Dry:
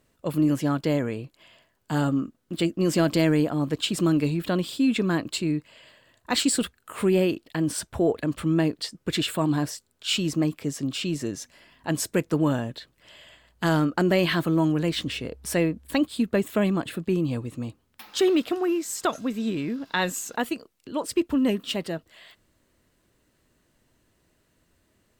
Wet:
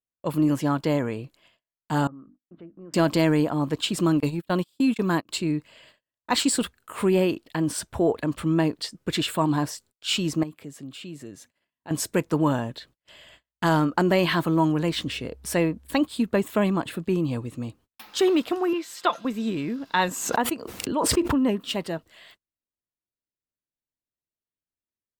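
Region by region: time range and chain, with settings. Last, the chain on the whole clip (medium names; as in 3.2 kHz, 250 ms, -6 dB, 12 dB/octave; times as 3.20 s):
2.07–2.94 s: four-pole ladder low-pass 1.7 kHz, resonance 25% + hum notches 50/100/150/200/250/300 Hz + compression 2:1, threshold -52 dBFS
4.20–5.29 s: gate -26 dBFS, range -32 dB + treble shelf 9.3 kHz +10 dB
10.43–11.91 s: peaking EQ 5.6 kHz -8 dB 0.46 oct + compression 1.5:1, threshold -54 dBFS + high-pass 62 Hz
18.73–19.25 s: high-pass 630 Hz 6 dB/octave + resonant high shelf 5.1 kHz -9.5 dB, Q 1.5 + comb 5.8 ms, depth 67%
20.08–21.61 s: high-pass 47 Hz + treble shelf 2.7 kHz -7.5 dB + swell ahead of each attack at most 40 dB/s
whole clip: gate -52 dBFS, range -35 dB; dynamic bell 950 Hz, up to +7 dB, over -45 dBFS, Q 2.5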